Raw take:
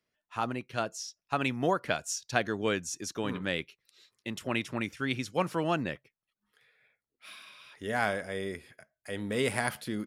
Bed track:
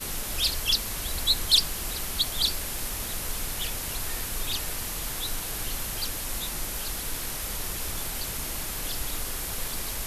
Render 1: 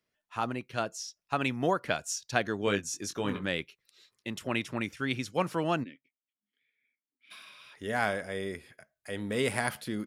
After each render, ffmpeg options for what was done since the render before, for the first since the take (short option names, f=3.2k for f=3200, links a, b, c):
-filter_complex "[0:a]asettb=1/sr,asplit=3[a][b][c];[a]atrim=end=2.654[d];[b]atrim=start=2.65:end=3.46,asetpts=PTS-STARTPTS,afade=t=in:d=0.004:c=qsin,afade=t=out:st=0.806:d=0.004:c=qsin,asplit=2[e][f];[f]adelay=20,volume=-6dB[g];[e][g]amix=inputs=2:normalize=0,atrim=end_sample=35721[h];[c]atrim=start=3.456[i];[d][h]acrossfade=d=0.004:c1=hsin:c2=qsin[j];[j][i]acrossfade=d=0.004:c1=qsin:c2=hsin,asplit=3[k][l][m];[k]afade=t=out:st=5.83:d=0.02[n];[l]asplit=3[o][p][q];[o]bandpass=f=270:t=q:w=8,volume=0dB[r];[p]bandpass=f=2.29k:t=q:w=8,volume=-6dB[s];[q]bandpass=f=3.01k:t=q:w=8,volume=-9dB[t];[r][s][t]amix=inputs=3:normalize=0,afade=t=in:st=5.83:d=0.02,afade=t=out:st=7.3:d=0.02[u];[m]afade=t=in:st=7.3:d=0.02[v];[n][u][v]amix=inputs=3:normalize=0"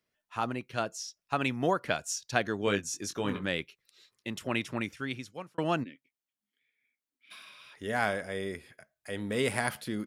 -filter_complex "[0:a]asplit=2[a][b];[a]atrim=end=5.58,asetpts=PTS-STARTPTS,afade=t=out:st=4.78:d=0.8[c];[b]atrim=start=5.58,asetpts=PTS-STARTPTS,afade=t=in:d=0.004:c=hsin[d];[c][d]concat=n=2:v=0:a=1"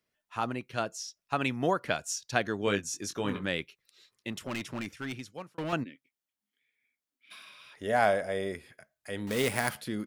-filter_complex "[0:a]asettb=1/sr,asplit=3[a][b][c];[a]atrim=end=4.324[d];[b]atrim=start=4.32:end=5.73,asetpts=PTS-STARTPTS,afade=t=in:d=0.004:c=qsin,afade=t=out:st=1.406:d=0.004:c=qsin,asoftclip=type=hard:threshold=-31dB[e];[c]atrim=start=5.726[f];[d][e]acrossfade=d=0.004:c1=hsin:c2=qsin[g];[g][f]acrossfade=d=0.004:c1=qsin:c2=hsin,asettb=1/sr,asplit=3[h][i][j];[h]atrim=end=7.784[k];[i]atrim=start=7.78:end=8.53,asetpts=PTS-STARTPTS,afade=t=in:d=0.004:c=qsin,afade=t=out:st=0.746:d=0.004:c=qsin,equalizer=f=640:t=o:w=0.69:g=9[l];[j]atrim=start=8.526[m];[k][l]acrossfade=d=0.004:c1=hsin:c2=qsin[n];[n][m]acrossfade=d=0.004:c1=qsin:c2=hsin,asettb=1/sr,asplit=3[o][p][q];[o]atrim=end=9.274[r];[p]atrim=start=9.27:end=9.73,asetpts=PTS-STARTPTS,afade=t=in:d=0.004:c=qsin,afade=t=out:st=0.456:d=0.004:c=qsin,acrusher=bits=2:mode=log:mix=0:aa=0.000001[s];[q]atrim=start=9.726[t];[r][s]acrossfade=d=0.004:c1=hsin:c2=qsin[u];[u][t]acrossfade=d=0.004:c1=qsin:c2=hsin"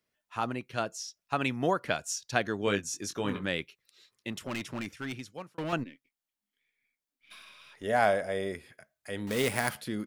-filter_complex "[0:a]asettb=1/sr,asplit=3[a][b][c];[a]atrim=end=5.784[d];[b]atrim=start=5.78:end=7.84,asetpts=PTS-STARTPTS,afade=t=in:d=0.004:c=qsin,afade=t=out:st=2.056:d=0.004:c=qsin,aeval=exprs='if(lt(val(0),0),0.708*val(0),val(0))':c=same[e];[c]atrim=start=7.836[f];[d][e]acrossfade=d=0.004:c1=hsin:c2=qsin[g];[g][f]acrossfade=d=0.004:c1=qsin:c2=hsin"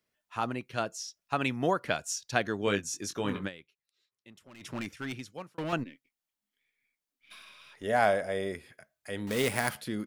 -filter_complex "[0:a]asplit=3[a][b][c];[a]atrim=end=3.64,asetpts=PTS-STARTPTS,afade=t=out:st=3.47:d=0.17:c=exp:silence=0.141254[d];[b]atrim=start=3.64:end=4.47,asetpts=PTS-STARTPTS,volume=-17dB[e];[c]atrim=start=4.47,asetpts=PTS-STARTPTS,afade=t=in:d=0.17:c=exp:silence=0.141254[f];[d][e][f]concat=n=3:v=0:a=1"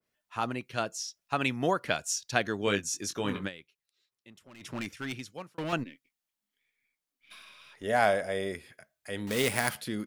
-af "adynamicequalizer=threshold=0.00708:dfrequency=1900:dqfactor=0.7:tfrequency=1900:tqfactor=0.7:attack=5:release=100:ratio=0.375:range=1.5:mode=boostabove:tftype=highshelf"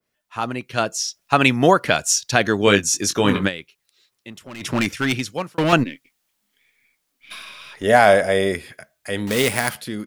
-af "dynaudnorm=f=160:g=11:m=10.5dB,alimiter=level_in=5.5dB:limit=-1dB:release=50:level=0:latency=1"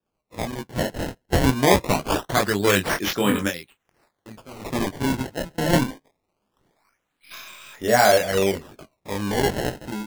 -af "flanger=delay=19:depth=5:speed=0.45,acrusher=samples=21:mix=1:aa=0.000001:lfo=1:lforange=33.6:lforate=0.23"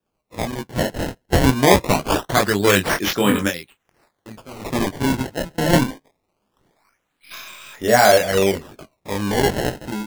-af "volume=3.5dB,alimiter=limit=-1dB:level=0:latency=1"